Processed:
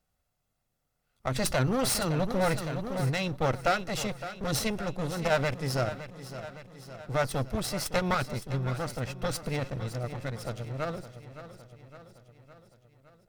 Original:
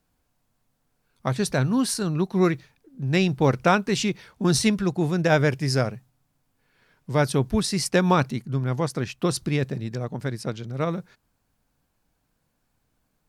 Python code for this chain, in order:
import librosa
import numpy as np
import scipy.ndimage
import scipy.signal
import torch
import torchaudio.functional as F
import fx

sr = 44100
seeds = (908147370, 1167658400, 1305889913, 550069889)

y = fx.lower_of_two(x, sr, delay_ms=1.5)
y = fx.echo_feedback(y, sr, ms=562, feedback_pct=59, wet_db=-13)
y = fx.env_flatten(y, sr, amount_pct=50, at=(1.34, 3.09), fade=0.02)
y = F.gain(torch.from_numpy(y), -5.0).numpy()